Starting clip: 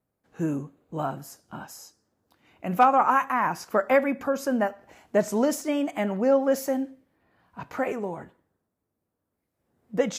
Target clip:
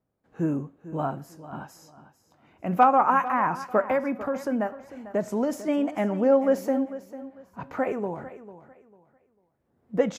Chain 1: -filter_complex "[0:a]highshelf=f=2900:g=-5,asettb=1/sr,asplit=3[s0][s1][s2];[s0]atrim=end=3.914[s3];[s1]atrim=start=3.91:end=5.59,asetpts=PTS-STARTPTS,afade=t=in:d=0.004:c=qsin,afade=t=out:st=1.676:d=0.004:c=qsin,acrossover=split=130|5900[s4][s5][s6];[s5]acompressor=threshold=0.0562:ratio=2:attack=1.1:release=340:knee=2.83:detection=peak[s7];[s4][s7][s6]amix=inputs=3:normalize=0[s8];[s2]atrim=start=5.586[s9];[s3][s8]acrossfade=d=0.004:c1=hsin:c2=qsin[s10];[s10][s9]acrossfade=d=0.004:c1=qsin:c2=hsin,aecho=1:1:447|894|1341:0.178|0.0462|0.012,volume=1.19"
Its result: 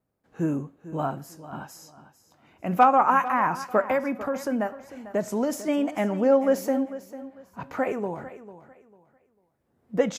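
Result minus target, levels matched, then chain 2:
8 kHz band +5.5 dB
-filter_complex "[0:a]highshelf=f=2900:g=-12,asettb=1/sr,asplit=3[s0][s1][s2];[s0]atrim=end=3.914[s3];[s1]atrim=start=3.91:end=5.59,asetpts=PTS-STARTPTS,afade=t=in:d=0.004:c=qsin,afade=t=out:st=1.676:d=0.004:c=qsin,acrossover=split=130|5900[s4][s5][s6];[s5]acompressor=threshold=0.0562:ratio=2:attack=1.1:release=340:knee=2.83:detection=peak[s7];[s4][s7][s6]amix=inputs=3:normalize=0[s8];[s2]atrim=start=5.586[s9];[s3][s8]acrossfade=d=0.004:c1=hsin:c2=qsin[s10];[s10][s9]acrossfade=d=0.004:c1=qsin:c2=hsin,aecho=1:1:447|894|1341:0.178|0.0462|0.012,volume=1.19"

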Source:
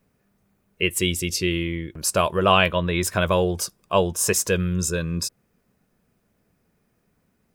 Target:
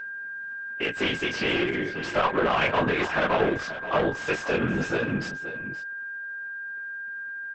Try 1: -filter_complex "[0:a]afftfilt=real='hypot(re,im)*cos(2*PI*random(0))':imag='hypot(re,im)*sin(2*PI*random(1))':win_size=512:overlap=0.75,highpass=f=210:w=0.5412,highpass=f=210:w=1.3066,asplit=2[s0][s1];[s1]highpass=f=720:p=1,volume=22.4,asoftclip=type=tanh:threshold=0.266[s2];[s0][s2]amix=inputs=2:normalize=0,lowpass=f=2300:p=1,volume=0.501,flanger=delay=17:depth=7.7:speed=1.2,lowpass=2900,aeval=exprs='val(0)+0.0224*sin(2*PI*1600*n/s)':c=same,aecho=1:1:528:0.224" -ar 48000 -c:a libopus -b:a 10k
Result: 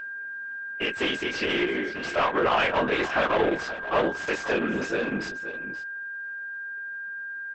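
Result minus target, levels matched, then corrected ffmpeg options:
125 Hz band -6.5 dB
-filter_complex "[0:a]afftfilt=real='hypot(re,im)*cos(2*PI*random(0))':imag='hypot(re,im)*sin(2*PI*random(1))':win_size=512:overlap=0.75,highpass=f=92:w=0.5412,highpass=f=92:w=1.3066,asplit=2[s0][s1];[s1]highpass=f=720:p=1,volume=22.4,asoftclip=type=tanh:threshold=0.266[s2];[s0][s2]amix=inputs=2:normalize=0,lowpass=f=2300:p=1,volume=0.501,flanger=delay=17:depth=7.7:speed=1.2,lowpass=2900,aeval=exprs='val(0)+0.0224*sin(2*PI*1600*n/s)':c=same,aecho=1:1:528:0.224" -ar 48000 -c:a libopus -b:a 10k

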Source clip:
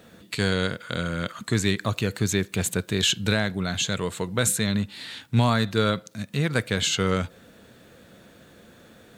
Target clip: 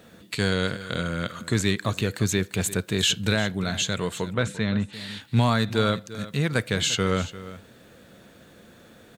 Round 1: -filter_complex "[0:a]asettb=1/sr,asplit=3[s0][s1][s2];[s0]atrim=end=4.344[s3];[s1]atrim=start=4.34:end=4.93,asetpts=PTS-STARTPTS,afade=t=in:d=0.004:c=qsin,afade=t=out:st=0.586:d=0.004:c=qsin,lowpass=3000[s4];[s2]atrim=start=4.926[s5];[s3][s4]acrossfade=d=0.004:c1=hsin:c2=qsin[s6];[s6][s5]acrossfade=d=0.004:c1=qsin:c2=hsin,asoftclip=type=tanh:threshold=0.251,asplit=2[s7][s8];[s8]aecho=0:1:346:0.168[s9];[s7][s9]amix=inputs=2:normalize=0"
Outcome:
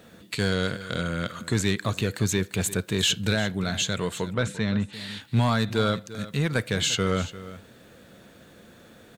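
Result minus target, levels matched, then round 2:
saturation: distortion +17 dB
-filter_complex "[0:a]asettb=1/sr,asplit=3[s0][s1][s2];[s0]atrim=end=4.344[s3];[s1]atrim=start=4.34:end=4.93,asetpts=PTS-STARTPTS,afade=t=in:d=0.004:c=qsin,afade=t=out:st=0.586:d=0.004:c=qsin,lowpass=3000[s4];[s2]atrim=start=4.926[s5];[s3][s4]acrossfade=d=0.004:c1=hsin:c2=qsin[s6];[s6][s5]acrossfade=d=0.004:c1=qsin:c2=hsin,asoftclip=type=tanh:threshold=0.794,asplit=2[s7][s8];[s8]aecho=0:1:346:0.168[s9];[s7][s9]amix=inputs=2:normalize=0"

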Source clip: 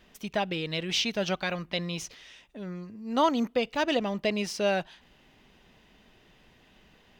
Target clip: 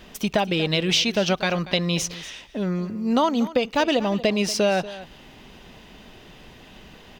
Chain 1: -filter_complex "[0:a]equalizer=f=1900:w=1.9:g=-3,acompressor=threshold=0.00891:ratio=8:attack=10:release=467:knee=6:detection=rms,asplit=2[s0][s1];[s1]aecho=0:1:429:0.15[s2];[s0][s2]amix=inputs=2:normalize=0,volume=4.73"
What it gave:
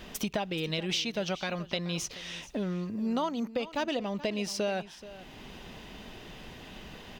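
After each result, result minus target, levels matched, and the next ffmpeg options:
echo 193 ms late; compression: peak gain reduction +10.5 dB
-filter_complex "[0:a]equalizer=f=1900:w=1.9:g=-3,acompressor=threshold=0.00891:ratio=8:attack=10:release=467:knee=6:detection=rms,asplit=2[s0][s1];[s1]aecho=0:1:236:0.15[s2];[s0][s2]amix=inputs=2:normalize=0,volume=4.73"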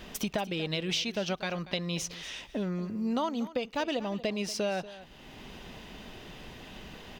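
compression: peak gain reduction +10.5 dB
-filter_complex "[0:a]equalizer=f=1900:w=1.9:g=-3,acompressor=threshold=0.0355:ratio=8:attack=10:release=467:knee=6:detection=rms,asplit=2[s0][s1];[s1]aecho=0:1:236:0.15[s2];[s0][s2]amix=inputs=2:normalize=0,volume=4.73"

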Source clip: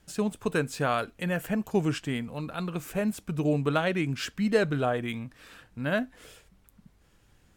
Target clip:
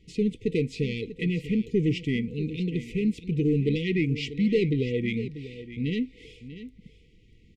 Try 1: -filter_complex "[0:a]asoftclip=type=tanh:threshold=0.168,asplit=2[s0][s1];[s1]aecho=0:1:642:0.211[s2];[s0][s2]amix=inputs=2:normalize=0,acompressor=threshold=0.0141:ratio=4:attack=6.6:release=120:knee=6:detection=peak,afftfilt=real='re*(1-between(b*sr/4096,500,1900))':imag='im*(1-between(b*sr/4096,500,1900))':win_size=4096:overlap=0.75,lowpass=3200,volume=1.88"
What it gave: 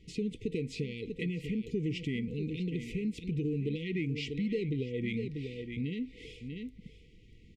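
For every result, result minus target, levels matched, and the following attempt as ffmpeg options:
compression: peak gain reduction +14.5 dB; saturation: distortion -8 dB
-filter_complex "[0:a]asoftclip=type=tanh:threshold=0.168,asplit=2[s0][s1];[s1]aecho=0:1:642:0.211[s2];[s0][s2]amix=inputs=2:normalize=0,afftfilt=real='re*(1-between(b*sr/4096,500,1900))':imag='im*(1-between(b*sr/4096,500,1900))':win_size=4096:overlap=0.75,lowpass=3200,volume=1.88"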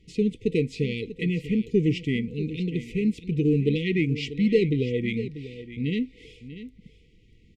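saturation: distortion -8 dB
-filter_complex "[0:a]asoftclip=type=tanh:threshold=0.0794,asplit=2[s0][s1];[s1]aecho=0:1:642:0.211[s2];[s0][s2]amix=inputs=2:normalize=0,afftfilt=real='re*(1-between(b*sr/4096,500,1900))':imag='im*(1-between(b*sr/4096,500,1900))':win_size=4096:overlap=0.75,lowpass=3200,volume=1.88"

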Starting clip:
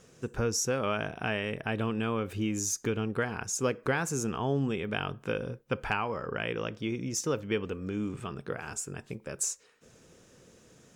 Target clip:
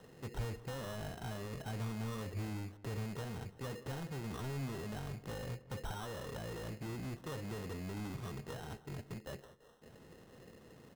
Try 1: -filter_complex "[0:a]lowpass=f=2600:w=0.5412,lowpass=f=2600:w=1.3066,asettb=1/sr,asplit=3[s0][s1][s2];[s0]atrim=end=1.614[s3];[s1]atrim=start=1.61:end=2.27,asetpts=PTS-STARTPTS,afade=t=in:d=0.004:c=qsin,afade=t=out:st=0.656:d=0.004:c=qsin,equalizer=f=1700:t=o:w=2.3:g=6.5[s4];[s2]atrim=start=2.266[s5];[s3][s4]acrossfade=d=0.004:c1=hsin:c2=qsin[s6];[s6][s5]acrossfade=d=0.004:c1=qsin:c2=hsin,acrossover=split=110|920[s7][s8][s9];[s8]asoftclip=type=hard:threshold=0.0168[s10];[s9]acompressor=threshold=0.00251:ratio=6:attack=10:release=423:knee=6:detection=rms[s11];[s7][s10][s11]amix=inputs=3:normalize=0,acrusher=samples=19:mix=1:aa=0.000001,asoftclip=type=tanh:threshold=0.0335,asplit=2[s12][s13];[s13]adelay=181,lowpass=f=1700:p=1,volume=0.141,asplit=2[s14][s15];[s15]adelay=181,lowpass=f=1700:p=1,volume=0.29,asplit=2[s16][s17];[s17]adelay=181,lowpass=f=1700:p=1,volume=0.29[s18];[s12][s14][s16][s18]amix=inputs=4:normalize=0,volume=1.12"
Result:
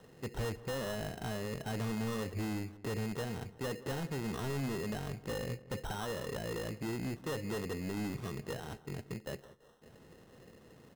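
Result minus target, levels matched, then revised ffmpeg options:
hard clipper: distortion -4 dB
-filter_complex "[0:a]lowpass=f=2600:w=0.5412,lowpass=f=2600:w=1.3066,asettb=1/sr,asplit=3[s0][s1][s2];[s0]atrim=end=1.614[s3];[s1]atrim=start=1.61:end=2.27,asetpts=PTS-STARTPTS,afade=t=in:d=0.004:c=qsin,afade=t=out:st=0.656:d=0.004:c=qsin,equalizer=f=1700:t=o:w=2.3:g=6.5[s4];[s2]atrim=start=2.266[s5];[s3][s4]acrossfade=d=0.004:c1=hsin:c2=qsin[s6];[s6][s5]acrossfade=d=0.004:c1=qsin:c2=hsin,acrossover=split=110|920[s7][s8][s9];[s8]asoftclip=type=hard:threshold=0.00562[s10];[s9]acompressor=threshold=0.00251:ratio=6:attack=10:release=423:knee=6:detection=rms[s11];[s7][s10][s11]amix=inputs=3:normalize=0,acrusher=samples=19:mix=1:aa=0.000001,asoftclip=type=tanh:threshold=0.0335,asplit=2[s12][s13];[s13]adelay=181,lowpass=f=1700:p=1,volume=0.141,asplit=2[s14][s15];[s15]adelay=181,lowpass=f=1700:p=1,volume=0.29,asplit=2[s16][s17];[s17]adelay=181,lowpass=f=1700:p=1,volume=0.29[s18];[s12][s14][s16][s18]amix=inputs=4:normalize=0,volume=1.12"

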